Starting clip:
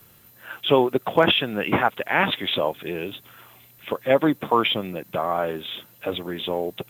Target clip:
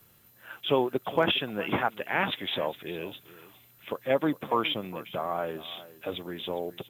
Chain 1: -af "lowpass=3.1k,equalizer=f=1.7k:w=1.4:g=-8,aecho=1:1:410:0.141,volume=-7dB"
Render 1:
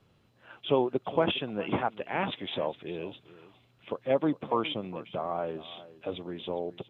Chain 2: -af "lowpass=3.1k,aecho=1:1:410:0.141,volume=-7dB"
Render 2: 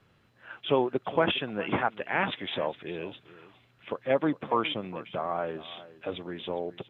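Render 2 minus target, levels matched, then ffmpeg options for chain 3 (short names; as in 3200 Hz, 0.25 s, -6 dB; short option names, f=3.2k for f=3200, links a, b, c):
4000 Hz band -3.0 dB
-af "aecho=1:1:410:0.141,volume=-7dB"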